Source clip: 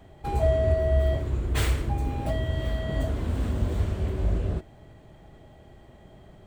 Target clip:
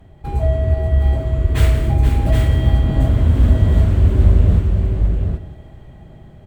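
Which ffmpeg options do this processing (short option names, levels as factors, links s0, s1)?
-filter_complex "[0:a]bass=f=250:g=8,treble=f=4000:g=-10,asplit=2[s0][s1];[s1]aecho=0:1:175:0.211[s2];[s0][s2]amix=inputs=2:normalize=0,dynaudnorm=f=340:g=9:m=3.76,aemphasis=mode=production:type=cd,asplit=2[s3][s4];[s4]aecho=0:1:263|478|771:0.126|0.376|0.562[s5];[s3][s5]amix=inputs=2:normalize=0"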